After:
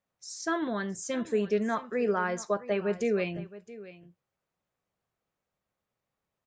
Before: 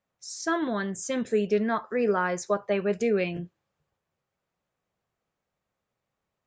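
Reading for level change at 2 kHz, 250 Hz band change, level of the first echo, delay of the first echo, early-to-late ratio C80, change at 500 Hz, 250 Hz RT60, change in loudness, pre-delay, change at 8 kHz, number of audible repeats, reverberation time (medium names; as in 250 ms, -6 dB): -3.0 dB, -3.0 dB, -17.0 dB, 667 ms, no reverb, -3.0 dB, no reverb, -3.0 dB, no reverb, -3.0 dB, 1, no reverb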